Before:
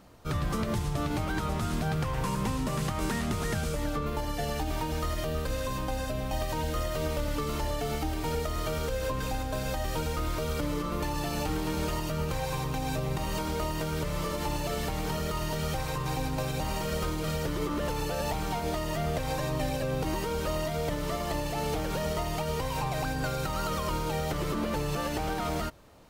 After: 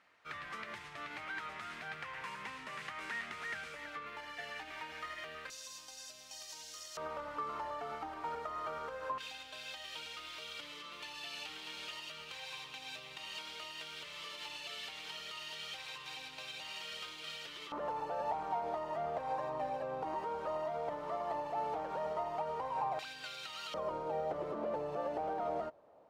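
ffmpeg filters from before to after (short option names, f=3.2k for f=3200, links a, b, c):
-af "asetnsamples=n=441:p=0,asendcmd='5.5 bandpass f 5800;6.97 bandpass f 1100;9.18 bandpass f 3100;17.72 bandpass f 840;22.99 bandpass f 3200;23.74 bandpass f 640',bandpass=f=2k:t=q:w=2.2:csg=0"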